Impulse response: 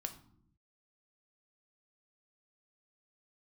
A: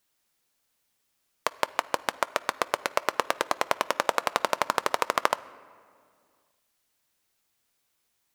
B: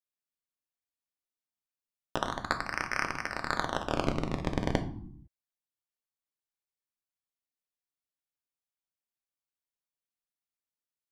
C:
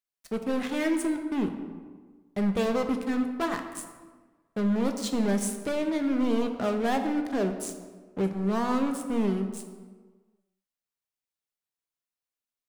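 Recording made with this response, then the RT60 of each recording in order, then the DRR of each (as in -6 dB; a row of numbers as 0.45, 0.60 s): B; 2.2, 0.70, 1.4 s; 15.5, 5.5, 5.0 dB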